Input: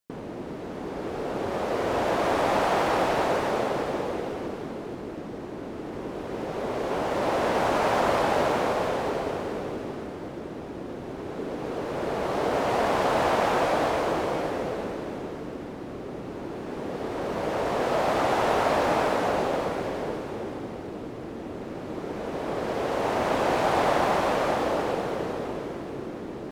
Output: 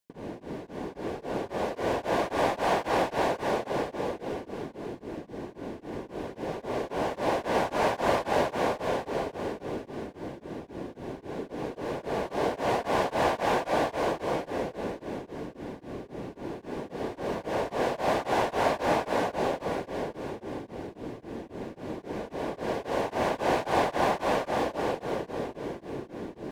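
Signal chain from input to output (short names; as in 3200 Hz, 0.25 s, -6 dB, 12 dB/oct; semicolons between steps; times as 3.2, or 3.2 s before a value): Butterworth band-stop 1300 Hz, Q 7; beating tremolo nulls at 3.7 Hz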